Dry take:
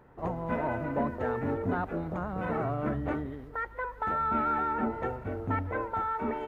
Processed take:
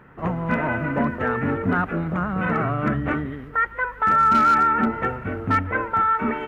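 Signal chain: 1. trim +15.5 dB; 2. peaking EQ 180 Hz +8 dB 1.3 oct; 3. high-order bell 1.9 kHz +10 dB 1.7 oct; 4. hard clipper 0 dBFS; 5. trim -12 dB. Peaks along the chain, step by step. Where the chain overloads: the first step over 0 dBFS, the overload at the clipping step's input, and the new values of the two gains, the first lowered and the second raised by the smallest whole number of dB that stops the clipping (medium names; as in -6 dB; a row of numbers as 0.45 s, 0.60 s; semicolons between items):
-2.5 dBFS, +0.5 dBFS, +4.0 dBFS, 0.0 dBFS, -12.0 dBFS; step 2, 4.0 dB; step 1 +11.5 dB, step 5 -8 dB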